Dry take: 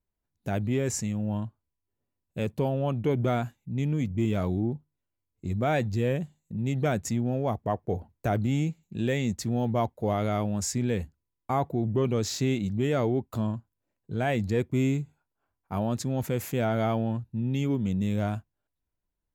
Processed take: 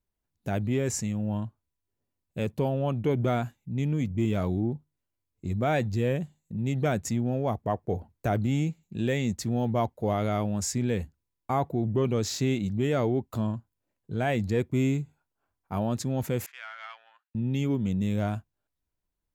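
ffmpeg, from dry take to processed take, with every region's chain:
-filter_complex "[0:a]asettb=1/sr,asplit=3[a][b][c];[a]atrim=end=16.464[d];[b]atrim=start=16.46:end=17.35,asetpts=PTS-STARTPTS,afade=t=in:d=0.004:c=qsin,afade=t=out:st=0.886:d=0.004:c=qsin,adynamicsmooth=sensitivity=1.5:basefreq=2.2k,agate=range=-33dB:threshold=-53dB:ratio=3:release=100:detection=peak,highpass=f=1.4k:w=0.5412,highpass=f=1.4k:w=1.3066[e];[c]atrim=start=17.346[f];[d][e]acrossfade=d=0.004:c1=hsin:c2=qsin[g];[g][f]acrossfade=d=0.004:c1=qsin:c2=hsin"

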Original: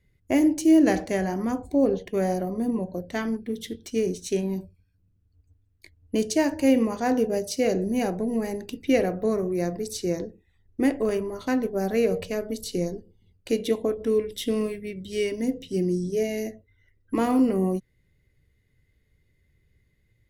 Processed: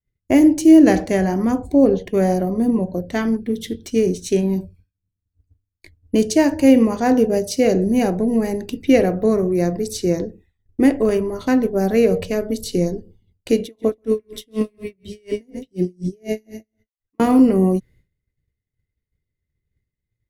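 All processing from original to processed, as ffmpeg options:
-filter_complex "[0:a]asettb=1/sr,asplit=3[a][b][c];[a]atrim=end=13.634[d];[b]atrim=start=13.63:end=17.2,asetpts=PTS-STARTPTS,afade=t=in:d=0.004:c=qsin,afade=t=out:st=3.566:d=0.004:c=qsin,aecho=1:1:133|266|399:0.316|0.0854|0.0231,atrim=end_sample=157437,aeval=exprs='val(0)*pow(10,-40*(0.5-0.5*cos(2*PI*4.1*n/s))/20)':c=same[e];[c]atrim=start=17.196[f];[d][e]acrossfade=d=0.004:c1=hsin:c2=qsin[g];[g][f]acrossfade=d=0.004:c1=qsin:c2=hsin,agate=range=-33dB:threshold=-51dB:ratio=3:detection=peak,lowshelf=f=430:g=4.5,volume=5dB"

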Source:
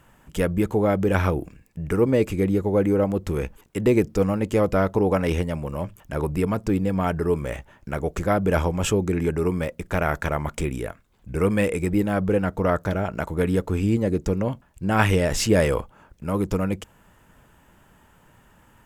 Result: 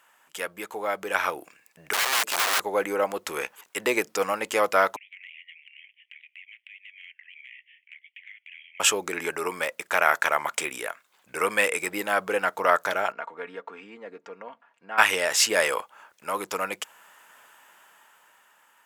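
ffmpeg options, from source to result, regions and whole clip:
-filter_complex "[0:a]asettb=1/sr,asplit=3[a][b][c];[a]atrim=end=1.934[d];[b]atrim=start=1.93:end=2.6,asetpts=PTS-STARTPTS,afade=t=in:d=0.004:c=qsin,afade=t=out:st=0.666:d=0.004:c=qsin,bandreject=f=2.3k:w=6,acrossover=split=350|3000[e][f][g];[f]acompressor=threshold=-30dB:ratio=4:attack=3.2:release=140:knee=2.83:detection=peak[h];[e][h][g]amix=inputs=3:normalize=0,aeval=exprs='(mod(15*val(0)+1,2)-1)/15':c=same[i];[c]atrim=start=2.596[j];[d][i]acrossfade=d=0.004:c1=hsin:c2=qsin[k];[k][j]acrossfade=d=0.004:c1=qsin:c2=hsin,asettb=1/sr,asplit=3[l][m][n];[l]atrim=end=4.964[o];[m]atrim=start=4.96:end=8.8,asetpts=PTS-STARTPTS,afade=t=in:d=0.004:c=qsin,afade=t=out:st=3.836:d=0.004:c=qsin,asuperpass=centerf=2500:order=12:qfactor=1.9,acompressor=threshold=-50dB:ratio=6:attack=3.2:release=140:knee=1:detection=peak[p];[n]atrim=start=8.796[q];[o][p]acrossfade=d=0.004:c1=hsin:c2=qsin[r];[r][q]acrossfade=d=0.004:c1=qsin:c2=hsin,asettb=1/sr,asplit=3[s][t][u];[s]atrim=end=13.124[v];[t]atrim=start=13.12:end=14.98,asetpts=PTS-STARTPTS,afade=t=in:d=0.004:c=qsin,afade=t=out:st=1.856:d=0.004:c=qsin,acompressor=threshold=-47dB:ratio=1.5:attack=3.2:release=140:knee=1:detection=peak,highpass=160,lowpass=2.2k,aecho=1:1:4.3:0.46,atrim=end_sample=82026[w];[u]atrim=start=14.976[x];[v][w]acrossfade=d=0.004:c1=hsin:c2=qsin[y];[y][x]acrossfade=d=0.004:c1=qsin:c2=hsin,highpass=940,dynaudnorm=f=370:g=7:m=8dB"

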